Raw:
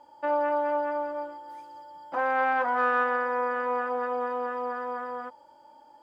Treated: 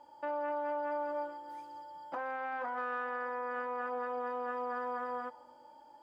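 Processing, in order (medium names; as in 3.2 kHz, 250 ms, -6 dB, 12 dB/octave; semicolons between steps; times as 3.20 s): on a send at -21 dB: reverberation RT60 1.4 s, pre-delay 109 ms; on the sum: peak limiter -26.5 dBFS, peak gain reduction 12 dB; trim -3 dB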